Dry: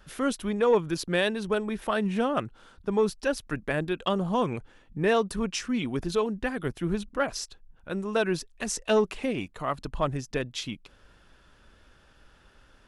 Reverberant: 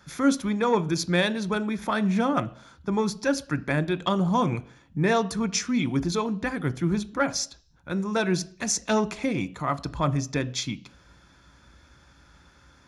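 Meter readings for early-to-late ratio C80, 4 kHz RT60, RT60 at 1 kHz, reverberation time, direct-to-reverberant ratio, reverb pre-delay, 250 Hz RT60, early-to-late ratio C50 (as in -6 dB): 23.5 dB, 0.60 s, 0.50 s, 0.50 s, 11.5 dB, 3 ms, 0.55 s, 20.0 dB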